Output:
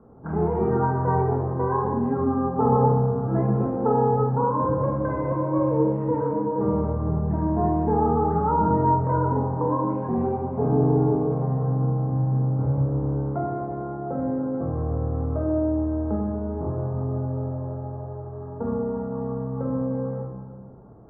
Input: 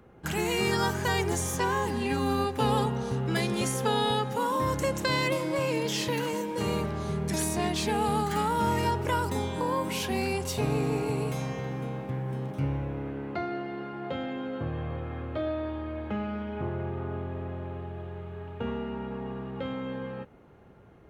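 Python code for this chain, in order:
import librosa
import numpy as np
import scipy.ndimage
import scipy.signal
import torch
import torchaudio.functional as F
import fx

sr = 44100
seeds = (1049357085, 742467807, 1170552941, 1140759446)

y = scipy.signal.sosfilt(scipy.signal.butter(6, 1200.0, 'lowpass', fs=sr, output='sos'), x)
y = fx.low_shelf(y, sr, hz=140.0, db=-4.0)
y = fx.room_shoebox(y, sr, seeds[0], volume_m3=600.0, walls='mixed', distance_m=1.6)
y = F.gain(torch.from_numpy(y), 2.5).numpy()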